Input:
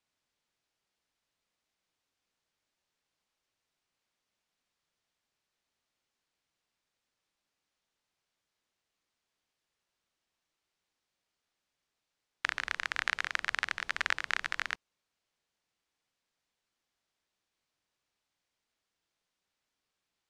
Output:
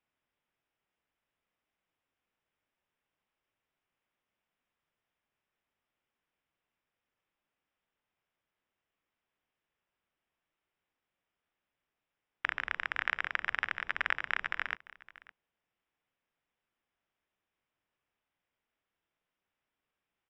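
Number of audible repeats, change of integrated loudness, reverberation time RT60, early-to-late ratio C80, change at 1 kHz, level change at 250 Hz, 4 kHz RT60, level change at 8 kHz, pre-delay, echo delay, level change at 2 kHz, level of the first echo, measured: 1, -0.5 dB, no reverb, no reverb, 0.0 dB, 0.0 dB, no reverb, under -15 dB, no reverb, 562 ms, 0.0 dB, -20.0 dB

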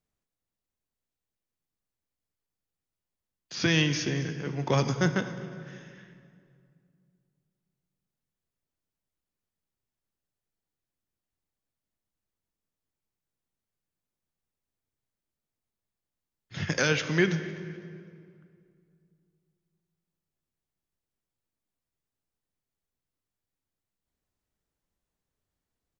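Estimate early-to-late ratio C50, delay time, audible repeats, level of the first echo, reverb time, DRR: 10.5 dB, 253 ms, 2, -21.0 dB, 2.3 s, 9.0 dB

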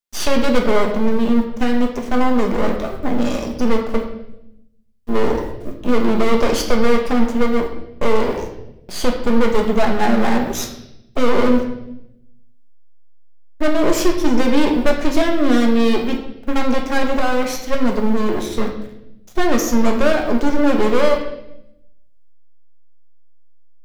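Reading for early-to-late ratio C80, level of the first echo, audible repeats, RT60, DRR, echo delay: 9.5 dB, no echo, no echo, 0.85 s, 1.5 dB, no echo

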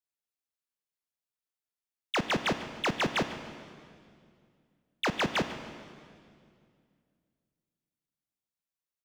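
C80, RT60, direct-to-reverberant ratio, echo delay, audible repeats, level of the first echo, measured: 10.0 dB, 2.3 s, 9.0 dB, 146 ms, 2, -17.0 dB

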